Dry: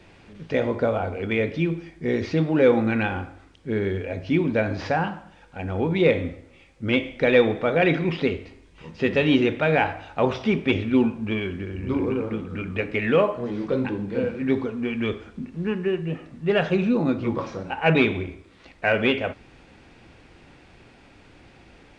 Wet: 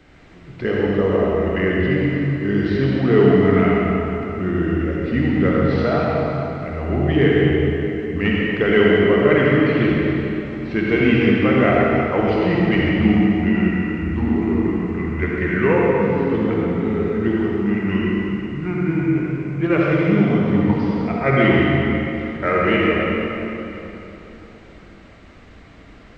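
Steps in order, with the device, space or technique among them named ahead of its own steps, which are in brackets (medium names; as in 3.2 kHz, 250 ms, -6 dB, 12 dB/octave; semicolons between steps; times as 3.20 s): slowed and reverbed (tape speed -16%; reverberation RT60 3.5 s, pre-delay 51 ms, DRR -4 dB)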